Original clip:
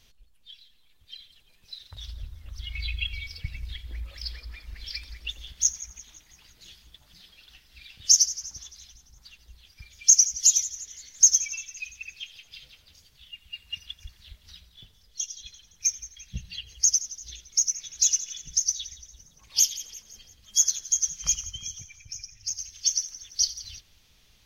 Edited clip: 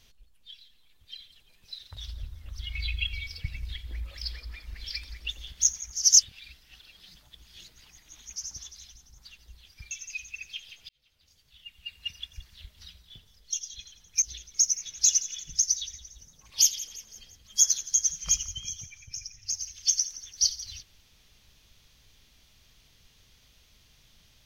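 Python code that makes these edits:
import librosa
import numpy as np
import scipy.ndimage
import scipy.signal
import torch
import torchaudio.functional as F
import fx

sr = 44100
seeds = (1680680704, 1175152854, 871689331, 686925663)

y = fx.edit(x, sr, fx.reverse_span(start_s=5.93, length_s=2.43),
    fx.cut(start_s=9.91, length_s=1.67),
    fx.fade_in_span(start_s=12.56, length_s=1.08),
    fx.cut(start_s=15.89, length_s=1.31), tone=tone)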